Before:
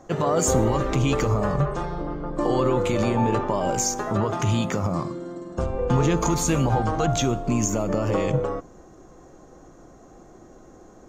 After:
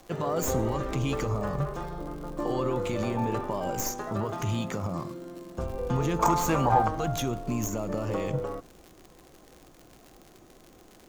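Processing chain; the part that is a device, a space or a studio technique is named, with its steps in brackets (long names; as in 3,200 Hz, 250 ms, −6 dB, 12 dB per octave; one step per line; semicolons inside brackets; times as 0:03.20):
0:06.19–0:06.88: parametric band 960 Hz +12.5 dB 1.7 octaves
record under a worn stylus (stylus tracing distortion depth 0.075 ms; surface crackle 96 per second −31 dBFS; pink noise bed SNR 33 dB)
level −7 dB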